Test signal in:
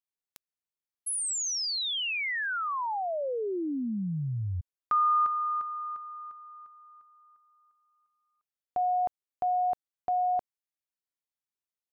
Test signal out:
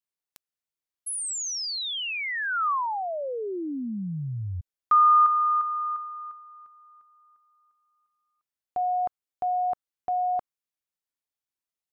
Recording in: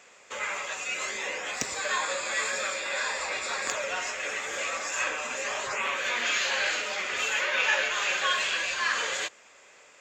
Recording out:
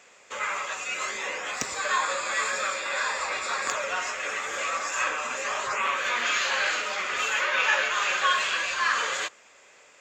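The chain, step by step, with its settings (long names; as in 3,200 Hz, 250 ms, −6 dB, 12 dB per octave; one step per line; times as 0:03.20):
dynamic equaliser 1,200 Hz, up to +7 dB, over −45 dBFS, Q 2.2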